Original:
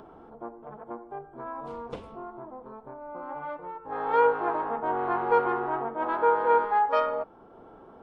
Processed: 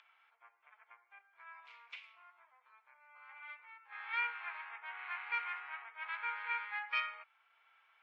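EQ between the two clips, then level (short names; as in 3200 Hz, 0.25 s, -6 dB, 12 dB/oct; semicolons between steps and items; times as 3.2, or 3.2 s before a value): ladder high-pass 2100 Hz, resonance 70%; air absorption 140 m; +10.0 dB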